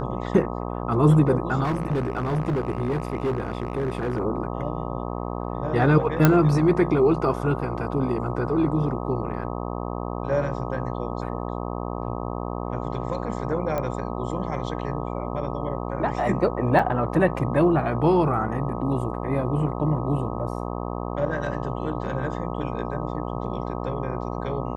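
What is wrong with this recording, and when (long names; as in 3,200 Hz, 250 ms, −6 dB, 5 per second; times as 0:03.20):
mains buzz 60 Hz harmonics 21 −30 dBFS
0:01.63–0:04.20: clipping −20.5 dBFS
0:06.25: click −3 dBFS
0:13.78: click −15 dBFS
0:16.79: drop-out 3.9 ms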